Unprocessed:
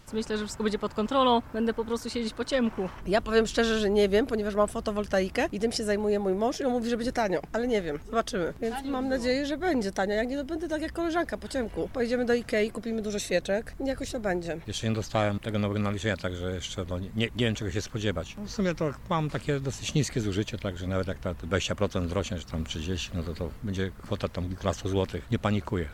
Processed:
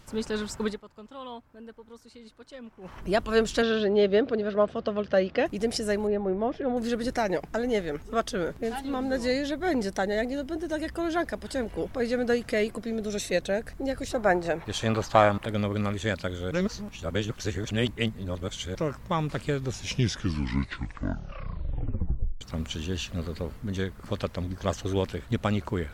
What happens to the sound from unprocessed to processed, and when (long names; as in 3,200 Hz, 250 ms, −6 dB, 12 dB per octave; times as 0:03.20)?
0:00.63–0:02.99: duck −18 dB, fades 0.18 s
0:03.62–0:05.46: loudspeaker in its box 110–4,300 Hz, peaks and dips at 530 Hz +6 dB, 920 Hz −5 dB, 2,200 Hz −3 dB
0:06.07–0:06.77: high-frequency loss of the air 420 metres
0:14.11–0:15.47: parametric band 990 Hz +11 dB 1.8 octaves
0:16.51–0:18.75: reverse
0:19.55: tape stop 2.86 s